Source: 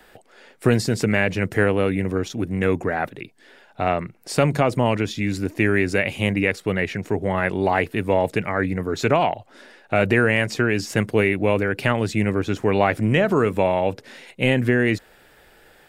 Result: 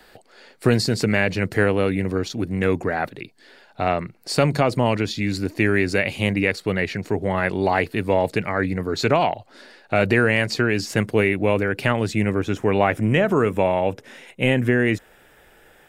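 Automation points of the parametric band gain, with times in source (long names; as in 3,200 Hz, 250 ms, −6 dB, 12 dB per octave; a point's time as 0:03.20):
parametric band 4,400 Hz 0.27 octaves
0:10.59 +9.5 dB
0:11.11 +1 dB
0:12.12 +1 dB
0:12.77 −10 dB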